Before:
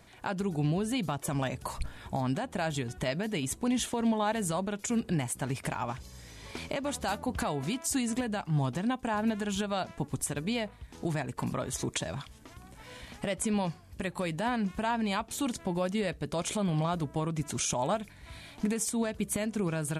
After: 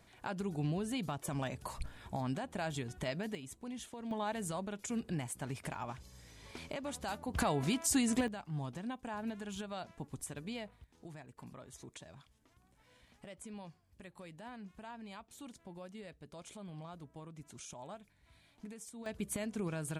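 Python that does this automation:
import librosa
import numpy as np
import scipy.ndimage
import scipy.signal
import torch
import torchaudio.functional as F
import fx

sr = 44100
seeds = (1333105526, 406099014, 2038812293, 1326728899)

y = fx.gain(x, sr, db=fx.steps((0.0, -6.5), (3.35, -15.5), (4.11, -8.0), (7.34, -0.5), (8.28, -11.0), (10.84, -18.5), (19.06, -7.0)))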